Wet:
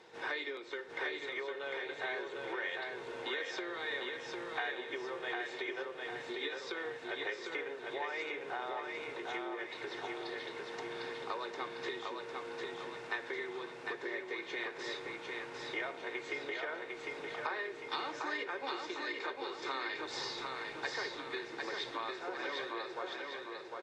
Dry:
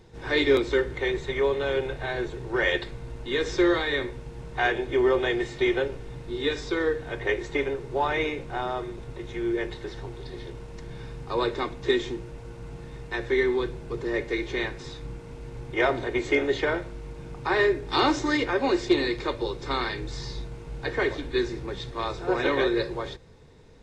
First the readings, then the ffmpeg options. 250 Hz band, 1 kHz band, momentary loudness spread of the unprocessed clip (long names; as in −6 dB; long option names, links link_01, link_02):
−17.5 dB, −9.5 dB, 17 LU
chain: -af "highpass=370,aemphasis=mode=reproduction:type=75fm,acompressor=threshold=-38dB:ratio=16,tiltshelf=frequency=800:gain=-6,aecho=1:1:752|1504|2256|3008|3760|4512:0.668|0.314|0.148|0.0694|0.0326|0.0153,volume=1dB"